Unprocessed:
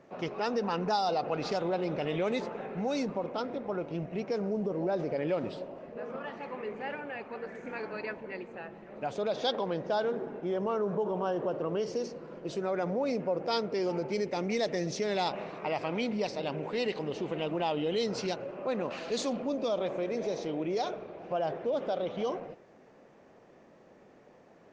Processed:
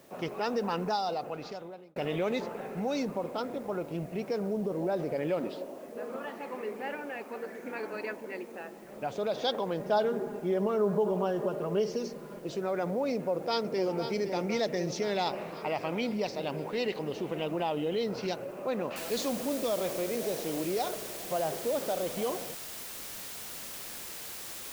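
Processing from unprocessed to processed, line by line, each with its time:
0.74–1.96 s: fade out
5.40–8.85 s: resonant low shelf 180 Hz -9.5 dB, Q 1.5
9.79–12.39 s: comb 4.9 ms
13.13–14.10 s: echo throw 510 ms, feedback 65%, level -9 dB
17.63–18.23 s: distance through air 150 m
18.96 s: noise floor step -63 dB -42 dB

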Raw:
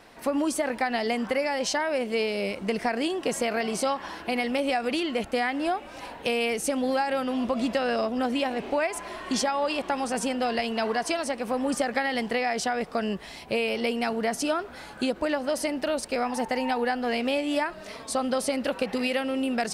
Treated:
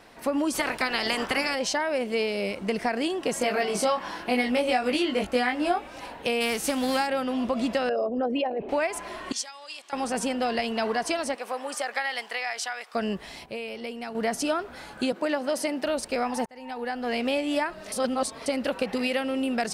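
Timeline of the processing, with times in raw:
0.53–1.54 s: spectral peaks clipped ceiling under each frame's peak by 19 dB
3.39–5.88 s: doubling 20 ms -2.5 dB
6.40–7.06 s: formants flattened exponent 0.6
7.89–8.69 s: resonances exaggerated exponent 2
9.32–9.93 s: band-pass filter 7.1 kHz, Q 0.98
11.34–12.94 s: high-pass 540 Hz -> 1.3 kHz
13.46–14.15 s: gain -8.5 dB
15.12–15.85 s: high-pass 170 Hz 24 dB/octave
16.46–17.21 s: fade in
17.92–18.46 s: reverse

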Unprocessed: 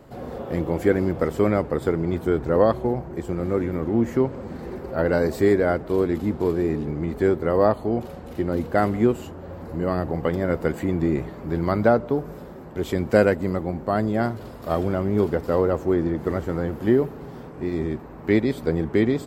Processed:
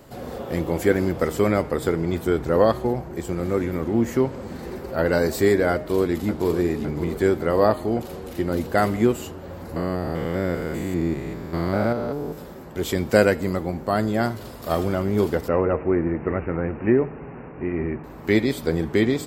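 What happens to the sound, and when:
5.72–6.48 s: echo throw 560 ms, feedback 70%, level -11 dB
9.76–12.38 s: spectrogram pixelated in time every 200 ms
15.48–18.04 s: careless resampling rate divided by 8×, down none, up filtered
whole clip: treble shelf 2.7 kHz +10.5 dB; de-hum 153.7 Hz, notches 38

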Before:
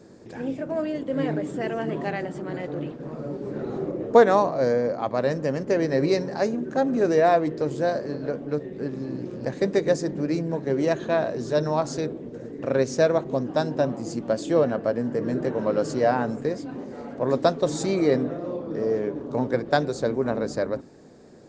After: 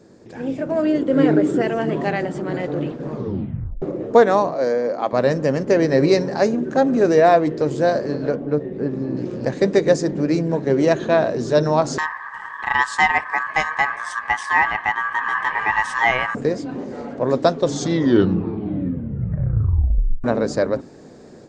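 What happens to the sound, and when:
0.83–1.61 s: small resonant body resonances 350/1400 Hz, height 7 dB -> 10 dB, ringing for 20 ms
3.11 s: tape stop 0.71 s
4.54–5.13 s: high-pass 260 Hz
8.35–9.17 s: treble shelf 2.4 kHz -12 dB
11.98–16.35 s: ring modulator 1.4 kHz
17.57 s: tape stop 2.67 s
whole clip: level rider gain up to 7 dB

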